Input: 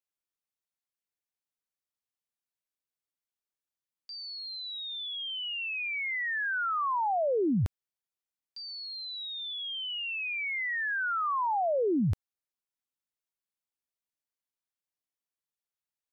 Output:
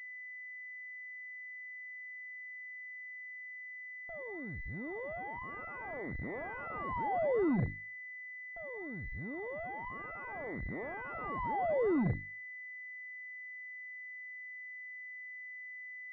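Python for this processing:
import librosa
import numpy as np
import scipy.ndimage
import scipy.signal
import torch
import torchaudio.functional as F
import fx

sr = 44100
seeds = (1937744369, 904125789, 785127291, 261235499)

y = fx.low_shelf(x, sr, hz=80.0, db=-6.0)
y = fx.hum_notches(y, sr, base_hz=50, count=4)
y = fx.cheby_harmonics(y, sr, harmonics=(3, 6), levels_db=(-20, -14), full_scale_db=-22.0)
y = fx.pwm(y, sr, carrier_hz=2000.0)
y = y * librosa.db_to_amplitude(-1.5)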